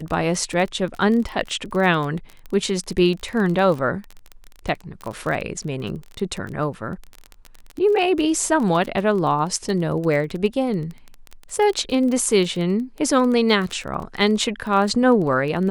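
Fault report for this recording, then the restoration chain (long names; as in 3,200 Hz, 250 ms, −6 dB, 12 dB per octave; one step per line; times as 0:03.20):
surface crackle 25 per second −26 dBFS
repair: click removal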